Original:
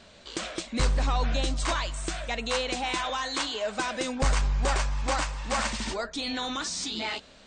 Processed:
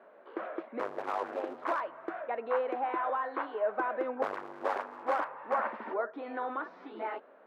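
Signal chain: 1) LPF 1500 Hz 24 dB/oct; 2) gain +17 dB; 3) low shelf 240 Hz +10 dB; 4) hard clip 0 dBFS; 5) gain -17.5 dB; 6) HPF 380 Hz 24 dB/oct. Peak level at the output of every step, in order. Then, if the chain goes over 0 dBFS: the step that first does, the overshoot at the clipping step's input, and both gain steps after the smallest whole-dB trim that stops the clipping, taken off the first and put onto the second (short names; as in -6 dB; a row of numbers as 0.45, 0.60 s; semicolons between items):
-16.5, +0.5, +9.0, 0.0, -17.5, -18.0 dBFS; step 2, 9.0 dB; step 2 +8 dB, step 5 -8.5 dB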